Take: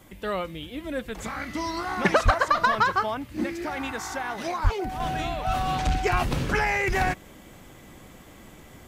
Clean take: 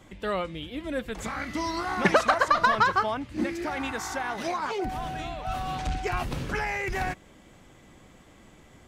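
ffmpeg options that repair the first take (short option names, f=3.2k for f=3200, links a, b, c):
-filter_complex "[0:a]asplit=3[a][b][c];[a]afade=t=out:st=2.24:d=0.02[d];[b]highpass=f=140:w=0.5412,highpass=f=140:w=1.3066,afade=t=in:st=2.24:d=0.02,afade=t=out:st=2.36:d=0.02[e];[c]afade=t=in:st=2.36:d=0.02[f];[d][e][f]amix=inputs=3:normalize=0,asplit=3[g][h][i];[g]afade=t=out:st=4.63:d=0.02[j];[h]highpass=f=140:w=0.5412,highpass=f=140:w=1.3066,afade=t=in:st=4.63:d=0.02,afade=t=out:st=4.75:d=0.02[k];[i]afade=t=in:st=4.75:d=0.02[l];[j][k][l]amix=inputs=3:normalize=0,agate=range=-21dB:threshold=-40dB,asetnsamples=n=441:p=0,asendcmd='5 volume volume -5.5dB',volume=0dB"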